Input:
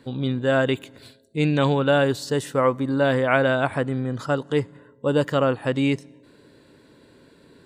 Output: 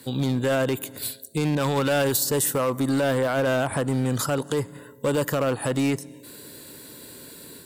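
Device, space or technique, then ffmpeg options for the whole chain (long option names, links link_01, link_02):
FM broadcast chain: -filter_complex "[0:a]highpass=46,dynaudnorm=framelen=120:gausssize=3:maxgain=4.5dB,acrossover=split=620|1600[link_01][link_02][link_03];[link_01]acompressor=threshold=-20dB:ratio=4[link_04];[link_02]acompressor=threshold=-22dB:ratio=4[link_05];[link_03]acompressor=threshold=-42dB:ratio=4[link_06];[link_04][link_05][link_06]amix=inputs=3:normalize=0,aemphasis=mode=production:type=50fm,alimiter=limit=-15.5dB:level=0:latency=1:release=30,asoftclip=type=hard:threshold=-19.5dB,lowpass=frequency=15000:width=0.5412,lowpass=frequency=15000:width=1.3066,aemphasis=mode=production:type=50fm,asettb=1/sr,asplit=3[link_07][link_08][link_09];[link_07]atrim=end=1.554[link_10];[link_08]atrim=start=1.55:end=2.17,asetpts=PTS-STARTPTS,afade=type=in:duration=0.004:curve=qsin,afade=type=out:start_time=0.616:duration=0.004:curve=qsin,adynamicequalizer=threshold=0.0158:dfrequency=1500:dqfactor=0.7:tfrequency=1500:tqfactor=0.7:attack=5:release=100:ratio=0.375:range=2:mode=boostabove:tftype=highshelf[link_11];[link_09]atrim=start=2.166[link_12];[link_10][link_11]acrossfade=duration=0.004:curve1=hsin:curve2=qsin[link_13];[link_13][link_12]acrossfade=duration=0.004:curve1=qsin:curve2=hsin,volume=1.5dB"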